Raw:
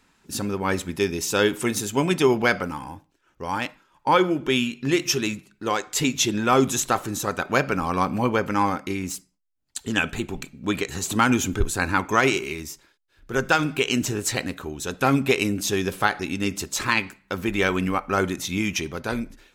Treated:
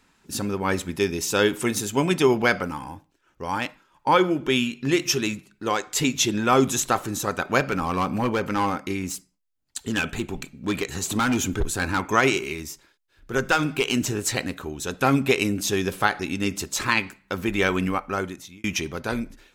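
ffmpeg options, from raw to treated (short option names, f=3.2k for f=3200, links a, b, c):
-filter_complex "[0:a]asettb=1/sr,asplit=3[a][b][c];[a]atrim=end=7.604[d];[b]atrim=start=7.6:end=12,asetpts=PTS-STARTPTS,afade=t=in:d=0.004:c=qsin,afade=t=out:st=4.396:d=0.004:c=qsin,volume=18dB,asoftclip=hard,volume=-18dB[e];[c]atrim=start=11.996[f];[d][e]acrossfade=d=0.004:c1=hsin:c2=qsin[g];[g][f]acrossfade=d=0.004:c1=qsin:c2=hsin,asettb=1/sr,asplit=3[h][i][j];[h]atrim=end=13.384[k];[i]atrim=start=13.38:end=13.97,asetpts=PTS-STARTPTS,afade=t=in:d=0.004:c=qsin,afade=t=out:st=0.586:d=0.004:c=qsin,aeval=exprs='clip(val(0),-1,0.178)':c=same[l];[j]atrim=start=13.966[m];[k][l]acrossfade=d=0.004:c1=hsin:c2=qsin[n];[n][m]acrossfade=d=0.004:c1=qsin:c2=hsin,asplit=2[o][p];[o]atrim=end=18.64,asetpts=PTS-STARTPTS,afade=t=out:st=17.85:d=0.79[q];[p]atrim=start=18.64,asetpts=PTS-STARTPTS,afade=t=in:d=0.004:c=hsin[r];[q][r]concat=n=2:v=0:a=1"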